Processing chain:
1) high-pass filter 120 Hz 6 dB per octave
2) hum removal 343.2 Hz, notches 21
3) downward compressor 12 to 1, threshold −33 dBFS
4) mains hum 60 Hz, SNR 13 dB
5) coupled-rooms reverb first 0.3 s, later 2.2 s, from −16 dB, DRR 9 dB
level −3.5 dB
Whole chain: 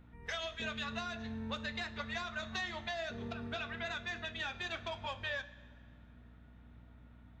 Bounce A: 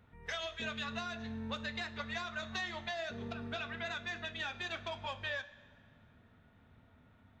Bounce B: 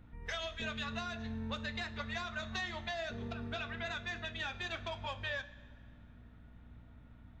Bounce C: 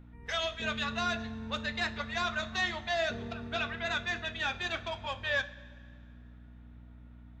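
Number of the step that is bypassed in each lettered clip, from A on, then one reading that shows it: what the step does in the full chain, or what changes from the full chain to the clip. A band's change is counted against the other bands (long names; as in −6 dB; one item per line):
4, change in momentary loudness spread −17 LU
1, 125 Hz band +3.5 dB
3, average gain reduction 4.0 dB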